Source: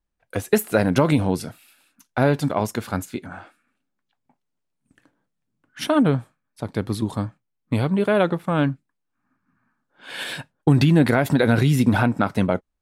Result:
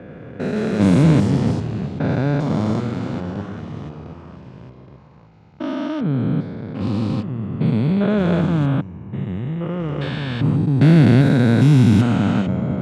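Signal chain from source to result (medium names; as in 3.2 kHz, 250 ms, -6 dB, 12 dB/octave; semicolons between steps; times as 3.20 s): spectrogram pixelated in time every 400 ms; tone controls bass +13 dB, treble +7 dB; ever faster or slower copies 85 ms, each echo -3 st, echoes 3, each echo -6 dB; level-controlled noise filter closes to 2.1 kHz, open at -7.5 dBFS; band-pass 160–6600 Hz; trim +2 dB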